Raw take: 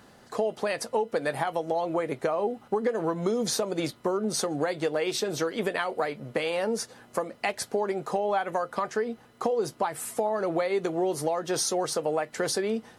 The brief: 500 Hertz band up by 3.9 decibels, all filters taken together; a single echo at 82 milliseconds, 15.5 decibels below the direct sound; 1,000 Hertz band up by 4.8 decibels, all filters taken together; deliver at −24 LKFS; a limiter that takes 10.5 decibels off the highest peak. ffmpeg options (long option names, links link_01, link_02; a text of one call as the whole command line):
ffmpeg -i in.wav -af "equalizer=frequency=500:width_type=o:gain=3.5,equalizer=frequency=1000:width_type=o:gain=5,alimiter=limit=-19dB:level=0:latency=1,aecho=1:1:82:0.168,volume=5dB" out.wav